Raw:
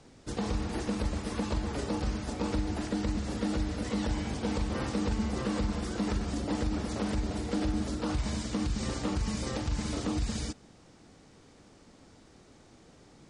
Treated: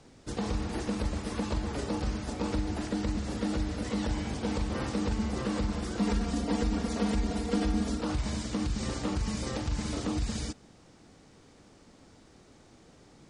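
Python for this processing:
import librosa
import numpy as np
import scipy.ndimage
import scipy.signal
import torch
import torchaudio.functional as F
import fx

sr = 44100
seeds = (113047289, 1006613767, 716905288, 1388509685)

y = fx.comb(x, sr, ms=4.3, depth=0.75, at=(6.0, 8.01))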